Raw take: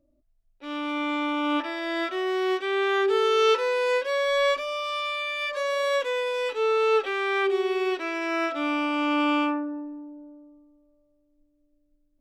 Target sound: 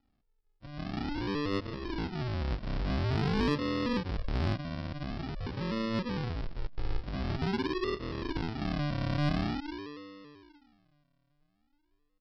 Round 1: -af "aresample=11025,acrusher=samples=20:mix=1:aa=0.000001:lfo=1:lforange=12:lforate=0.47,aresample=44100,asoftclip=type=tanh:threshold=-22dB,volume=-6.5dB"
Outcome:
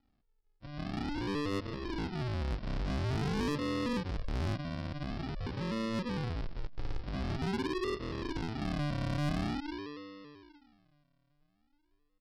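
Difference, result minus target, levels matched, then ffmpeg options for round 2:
soft clip: distortion +14 dB
-af "aresample=11025,acrusher=samples=20:mix=1:aa=0.000001:lfo=1:lforange=12:lforate=0.47,aresample=44100,asoftclip=type=tanh:threshold=-12dB,volume=-6.5dB"

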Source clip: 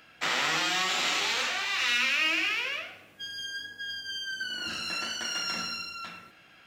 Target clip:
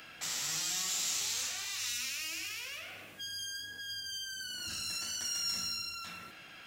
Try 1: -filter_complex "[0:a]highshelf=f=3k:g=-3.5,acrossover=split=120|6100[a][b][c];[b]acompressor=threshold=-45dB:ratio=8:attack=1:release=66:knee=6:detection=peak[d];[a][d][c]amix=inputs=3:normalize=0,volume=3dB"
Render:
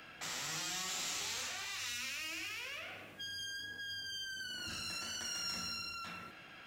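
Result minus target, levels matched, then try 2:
8000 Hz band -2.5 dB
-filter_complex "[0:a]highshelf=f=3k:g=5.5,acrossover=split=120|6100[a][b][c];[b]acompressor=threshold=-45dB:ratio=8:attack=1:release=66:knee=6:detection=peak[d];[a][d][c]amix=inputs=3:normalize=0,volume=3dB"

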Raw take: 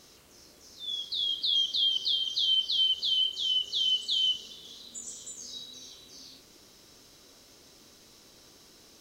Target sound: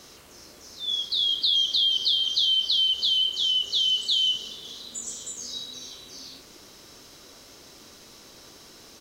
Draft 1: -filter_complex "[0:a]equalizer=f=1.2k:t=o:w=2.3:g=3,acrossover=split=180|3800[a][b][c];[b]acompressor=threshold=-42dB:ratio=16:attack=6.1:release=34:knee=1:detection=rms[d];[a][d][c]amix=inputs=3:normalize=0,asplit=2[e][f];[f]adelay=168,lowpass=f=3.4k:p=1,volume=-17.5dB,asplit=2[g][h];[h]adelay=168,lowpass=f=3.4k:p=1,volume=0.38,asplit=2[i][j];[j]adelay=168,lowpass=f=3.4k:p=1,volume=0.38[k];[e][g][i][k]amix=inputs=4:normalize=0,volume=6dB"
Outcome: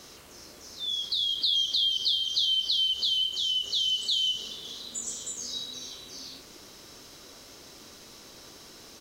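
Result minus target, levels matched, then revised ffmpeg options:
compressor: peak gain reduction +9.5 dB
-filter_complex "[0:a]equalizer=f=1.2k:t=o:w=2.3:g=3,acrossover=split=180|3800[a][b][c];[b]acompressor=threshold=-32dB:ratio=16:attack=6.1:release=34:knee=1:detection=rms[d];[a][d][c]amix=inputs=3:normalize=0,asplit=2[e][f];[f]adelay=168,lowpass=f=3.4k:p=1,volume=-17.5dB,asplit=2[g][h];[h]adelay=168,lowpass=f=3.4k:p=1,volume=0.38,asplit=2[i][j];[j]adelay=168,lowpass=f=3.4k:p=1,volume=0.38[k];[e][g][i][k]amix=inputs=4:normalize=0,volume=6dB"

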